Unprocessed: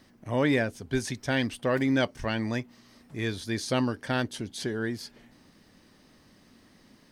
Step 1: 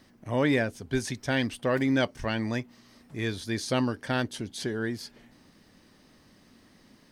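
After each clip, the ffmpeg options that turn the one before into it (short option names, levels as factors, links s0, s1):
-af anull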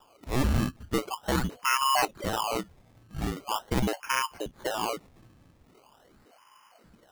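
-af "lowpass=f=2700:t=q:w=0.5098,lowpass=f=2700:t=q:w=0.6013,lowpass=f=2700:t=q:w=0.9,lowpass=f=2700:t=q:w=2.563,afreqshift=-3200,acrusher=samples=21:mix=1:aa=0.000001:lfo=1:lforange=21:lforate=0.42"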